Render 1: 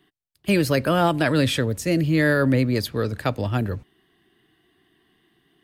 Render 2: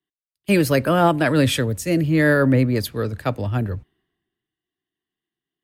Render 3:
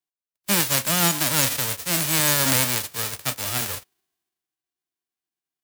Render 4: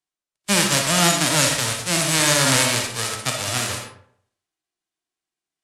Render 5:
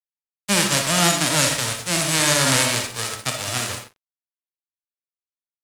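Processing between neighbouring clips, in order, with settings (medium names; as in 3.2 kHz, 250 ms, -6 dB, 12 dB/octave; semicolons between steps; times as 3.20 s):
dynamic bell 4.4 kHz, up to -5 dB, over -42 dBFS, Q 1; three bands expanded up and down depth 70%; trim +2.5 dB
formants flattened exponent 0.1; trim -4 dB
low-pass 10 kHz 24 dB/octave; reverberation RT60 0.60 s, pre-delay 15 ms, DRR 2.5 dB; trim +3 dB
crossover distortion -38 dBFS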